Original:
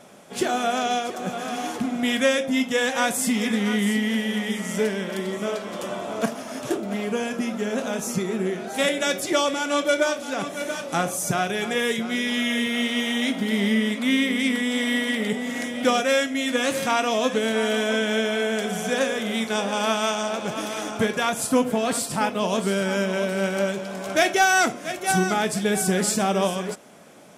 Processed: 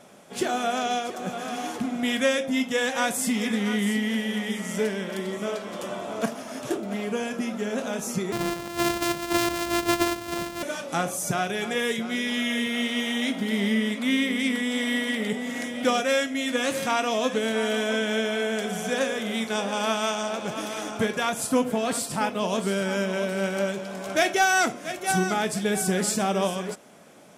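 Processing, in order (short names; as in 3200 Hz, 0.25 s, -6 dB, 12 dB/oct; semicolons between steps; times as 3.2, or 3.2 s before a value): 8.32–10.63 sample sorter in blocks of 128 samples; gain -2.5 dB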